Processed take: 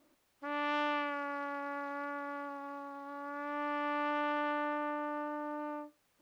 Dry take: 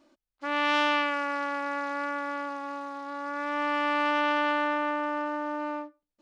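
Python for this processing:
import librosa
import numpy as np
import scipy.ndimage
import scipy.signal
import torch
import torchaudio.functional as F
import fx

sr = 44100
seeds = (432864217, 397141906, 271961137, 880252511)

p1 = fx.quant_dither(x, sr, seeds[0], bits=8, dither='triangular')
p2 = x + (p1 * 10.0 ** (-10.0 / 20.0))
p3 = fx.high_shelf(p2, sr, hz=2800.0, db=-12.0)
y = p3 * 10.0 ** (-9.0 / 20.0)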